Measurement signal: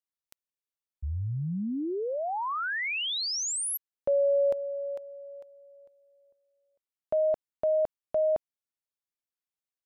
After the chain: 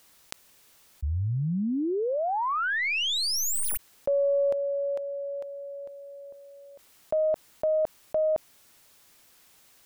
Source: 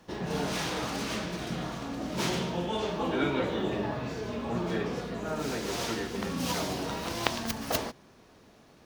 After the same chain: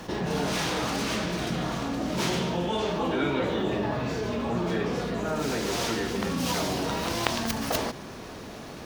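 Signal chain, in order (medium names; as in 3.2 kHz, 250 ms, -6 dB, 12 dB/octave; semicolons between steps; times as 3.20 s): tracing distortion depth 0.029 ms; level flattener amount 50%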